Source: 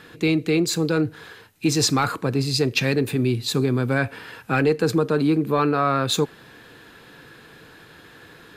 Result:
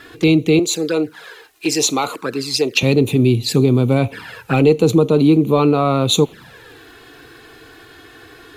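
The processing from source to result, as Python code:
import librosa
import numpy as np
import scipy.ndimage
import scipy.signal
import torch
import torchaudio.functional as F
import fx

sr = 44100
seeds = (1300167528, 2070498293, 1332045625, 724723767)

y = fx.highpass(x, sr, hz=380.0, slope=12, at=(0.59, 2.83))
y = fx.dmg_crackle(y, sr, seeds[0], per_s=550.0, level_db=-52.0)
y = fx.env_flanger(y, sr, rest_ms=3.2, full_db=-20.0)
y = y * librosa.db_to_amplitude(8.0)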